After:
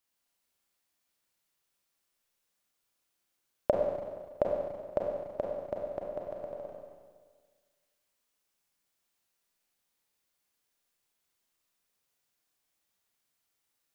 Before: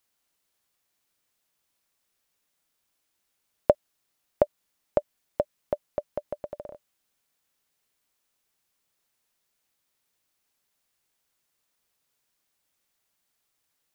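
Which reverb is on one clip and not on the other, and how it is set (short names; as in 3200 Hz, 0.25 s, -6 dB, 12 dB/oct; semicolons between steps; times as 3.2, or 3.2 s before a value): Schroeder reverb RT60 1.6 s, combs from 32 ms, DRR -1.5 dB; gain -7 dB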